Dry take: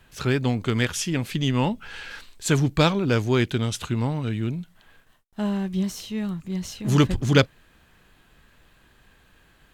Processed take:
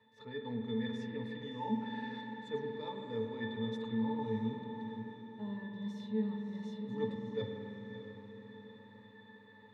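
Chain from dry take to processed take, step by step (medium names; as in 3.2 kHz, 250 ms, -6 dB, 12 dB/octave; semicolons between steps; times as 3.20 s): high-pass 330 Hz 12 dB/octave; reverse; compression 5:1, threshold -42 dBFS, peak gain reduction 25 dB; reverse; pitch-class resonator A, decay 0.22 s; echo that smears into a reverb 619 ms, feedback 48%, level -10.5 dB; spring tank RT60 3.4 s, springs 49 ms, chirp 40 ms, DRR 2 dB; trim +16.5 dB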